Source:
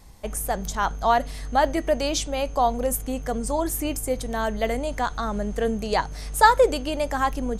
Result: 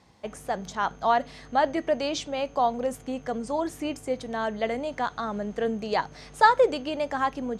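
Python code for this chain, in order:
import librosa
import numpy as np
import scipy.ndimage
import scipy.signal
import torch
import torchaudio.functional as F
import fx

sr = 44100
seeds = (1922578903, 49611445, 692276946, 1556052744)

y = fx.bandpass_edges(x, sr, low_hz=140.0, high_hz=4700.0)
y = F.gain(torch.from_numpy(y), -2.5).numpy()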